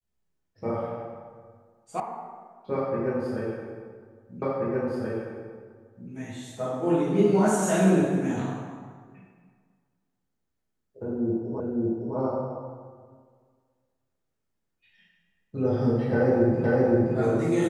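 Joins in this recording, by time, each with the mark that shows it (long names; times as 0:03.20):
0:02.00: cut off before it has died away
0:04.42: the same again, the last 1.68 s
0:11.60: the same again, the last 0.56 s
0:16.64: the same again, the last 0.52 s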